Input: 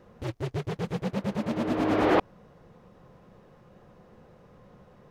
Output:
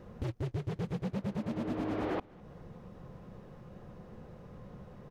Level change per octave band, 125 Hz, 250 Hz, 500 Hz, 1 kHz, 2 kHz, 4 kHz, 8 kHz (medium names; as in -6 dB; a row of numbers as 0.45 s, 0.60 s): -3.0 dB, -7.0 dB, -10.0 dB, -12.0 dB, -12.5 dB, -11.5 dB, no reading